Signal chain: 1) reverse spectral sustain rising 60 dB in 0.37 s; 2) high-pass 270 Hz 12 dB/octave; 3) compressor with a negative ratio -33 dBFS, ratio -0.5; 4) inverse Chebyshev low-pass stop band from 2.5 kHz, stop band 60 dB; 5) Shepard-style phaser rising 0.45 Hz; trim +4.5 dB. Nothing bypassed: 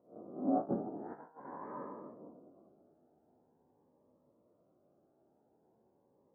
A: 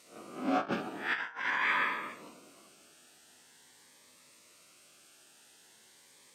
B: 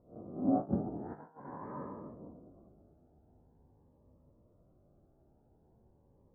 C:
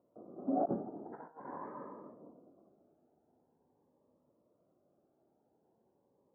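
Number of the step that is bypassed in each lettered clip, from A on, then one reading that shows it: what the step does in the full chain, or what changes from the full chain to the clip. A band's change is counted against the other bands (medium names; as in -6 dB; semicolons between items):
4, 2 kHz band +32.5 dB; 2, 125 Hz band +9.0 dB; 1, 250 Hz band -2.0 dB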